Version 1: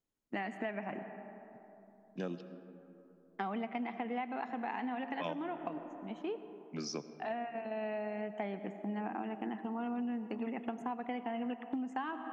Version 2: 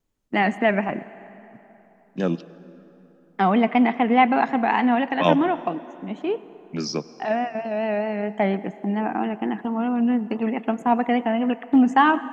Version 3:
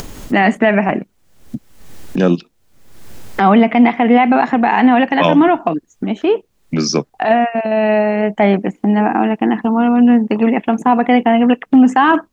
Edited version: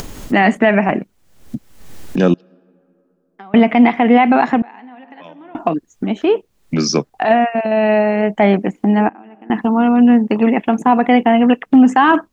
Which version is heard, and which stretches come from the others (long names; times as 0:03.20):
3
0:02.34–0:03.54: punch in from 1
0:04.62–0:05.55: punch in from 1
0:09.09–0:09.50: punch in from 1
not used: 2